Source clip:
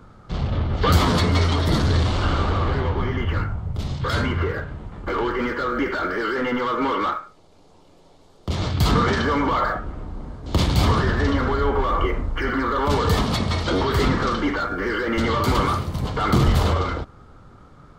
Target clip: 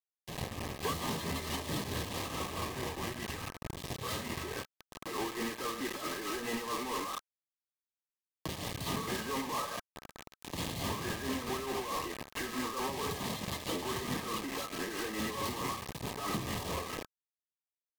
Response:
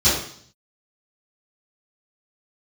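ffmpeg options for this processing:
-af "highpass=140,acompressor=threshold=-44dB:ratio=2,acrusher=bits=5:mix=0:aa=0.000001,asuperstop=centerf=1500:order=8:qfactor=6.2,tremolo=f=4.6:d=0.5,asetrate=41625,aresample=44100,atempo=1.05946"

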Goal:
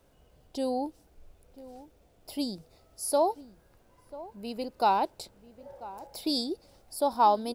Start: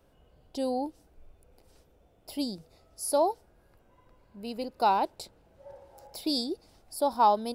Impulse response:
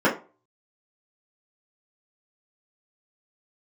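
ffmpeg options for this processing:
-filter_complex "[0:a]asplit=2[link_01][link_02];[link_02]adelay=991.3,volume=-17dB,highshelf=frequency=4000:gain=-22.3[link_03];[link_01][link_03]amix=inputs=2:normalize=0,acrusher=bits=11:mix=0:aa=0.000001"

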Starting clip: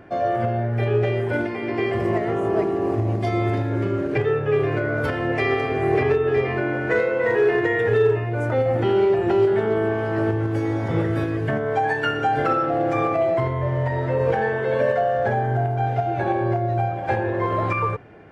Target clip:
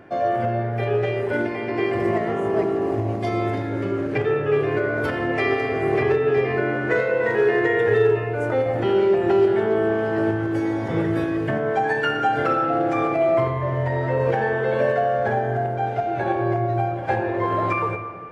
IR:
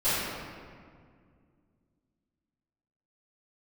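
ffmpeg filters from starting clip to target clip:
-filter_complex "[0:a]lowshelf=frequency=72:gain=-10.5,asplit=2[link_01][link_02];[1:a]atrim=start_sample=2205,adelay=42[link_03];[link_02][link_03]afir=irnorm=-1:irlink=0,volume=-22.5dB[link_04];[link_01][link_04]amix=inputs=2:normalize=0"

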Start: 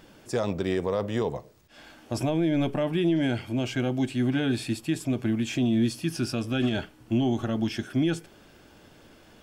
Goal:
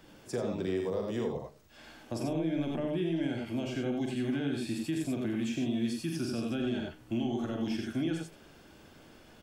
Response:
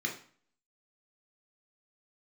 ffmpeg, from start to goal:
-filter_complex "[0:a]asettb=1/sr,asplit=3[link_01][link_02][link_03];[link_01]atrim=end=0.764[link_04];[link_02]atrim=start=0.76:end=1.17,asetpts=PTS-STARTPTS,afade=type=in:duration=0.004:curve=qsin,afade=type=out:start_time=0.406:duration=0.004:curve=qsin,bass=frequency=250:gain=-1,treble=frequency=4000:gain=6[link_05];[link_03]atrim=start=1.166[link_06];[link_04][link_05]acrossfade=duration=0.004:curve1=hsin:curve2=qsin[link_07];[link_07][link_06]acrossfade=duration=0.004:curve1=qsin:curve2=hsin,aecho=1:1:43|83|96:0.501|0.531|0.473,acrossover=split=180|530[link_08][link_09][link_10];[link_08]acompressor=threshold=-39dB:ratio=4[link_11];[link_09]acompressor=threshold=-26dB:ratio=4[link_12];[link_10]acompressor=threshold=-38dB:ratio=4[link_13];[link_11][link_12][link_13]amix=inputs=3:normalize=0,volume=-4.5dB"

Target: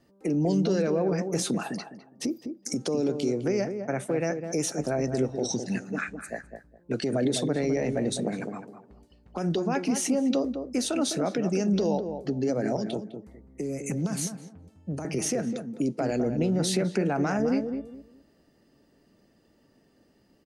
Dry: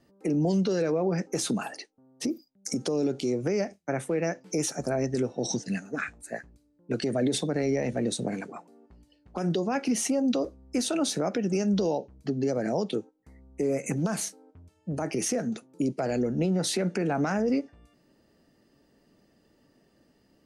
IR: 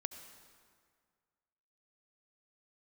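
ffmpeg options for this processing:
-filter_complex "[0:a]asettb=1/sr,asplit=3[link_01][link_02][link_03];[link_01]atrim=end=12.764[link_04];[link_02]atrim=start=12.76:end=15.05,asetpts=PTS-STARTPTS,afade=type=in:duration=0.004:curve=qsin,afade=type=out:start_time=2.286:duration=0.004:curve=qsin,acrossover=split=290|3000[link_05][link_06][link_07];[link_06]acompressor=threshold=-37dB:ratio=6[link_08];[link_05][link_08][link_07]amix=inputs=3:normalize=0[link_09];[link_03]atrim=start=15.046[link_10];[link_04][link_09]acrossfade=duration=0.004:curve1=hsin:curve2=qsin[link_11];[link_11][link_10]acrossfade=duration=0.004:curve1=qsin:curve2=hsin,asplit=2[link_12][link_13];[link_13]adelay=206,lowpass=frequency=890:poles=1,volume=-6dB,asplit=2[link_14][link_15];[link_15]adelay=206,lowpass=frequency=890:poles=1,volume=0.26,asplit=2[link_16][link_17];[link_17]adelay=206,lowpass=frequency=890:poles=1,volume=0.26[link_18];[link_12][link_14][link_16][link_18]amix=inputs=4:normalize=0"

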